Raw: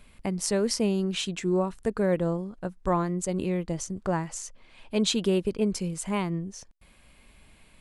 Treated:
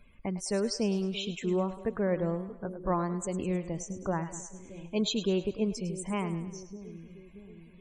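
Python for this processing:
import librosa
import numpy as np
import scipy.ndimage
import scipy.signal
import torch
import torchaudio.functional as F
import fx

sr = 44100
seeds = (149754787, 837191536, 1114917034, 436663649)

y = fx.spec_topn(x, sr, count=64)
y = fx.echo_split(y, sr, split_hz=480.0, low_ms=629, high_ms=104, feedback_pct=52, wet_db=-12.5)
y = y * librosa.db_to_amplitude(-4.0)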